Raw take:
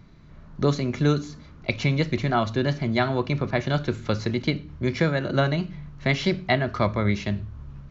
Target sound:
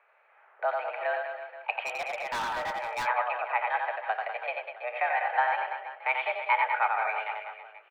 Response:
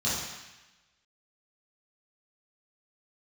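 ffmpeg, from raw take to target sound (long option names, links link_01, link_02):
-filter_complex "[0:a]highpass=frequency=450:width_type=q:width=0.5412,highpass=frequency=450:width_type=q:width=1.307,lowpass=frequency=2400:width_type=q:width=0.5176,lowpass=frequency=2400:width_type=q:width=0.7071,lowpass=frequency=2400:width_type=q:width=1.932,afreqshift=230,aecho=1:1:90|198|327.6|483.1|669.7:0.631|0.398|0.251|0.158|0.1,asplit=3[link_01][link_02][link_03];[link_01]afade=type=out:start_time=1.85:duration=0.02[link_04];[link_02]asoftclip=type=hard:threshold=-27.5dB,afade=type=in:start_time=1.85:duration=0.02,afade=type=out:start_time=3.05:duration=0.02[link_05];[link_03]afade=type=in:start_time=3.05:duration=0.02[link_06];[link_04][link_05][link_06]amix=inputs=3:normalize=0,volume=-1.5dB"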